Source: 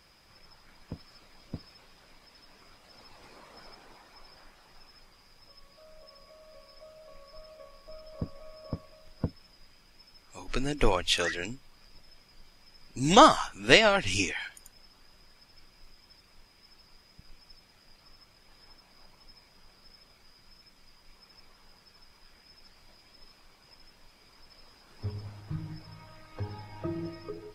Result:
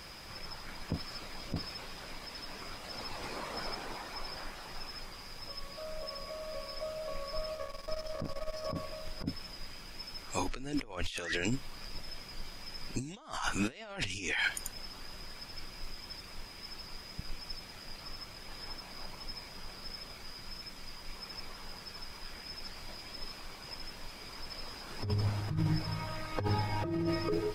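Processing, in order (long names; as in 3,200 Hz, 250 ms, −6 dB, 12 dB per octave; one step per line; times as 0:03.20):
0:07.55–0:08.67: gain on one half-wave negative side −12 dB
compressor whose output falls as the input rises −40 dBFS, ratio −1
level +3.5 dB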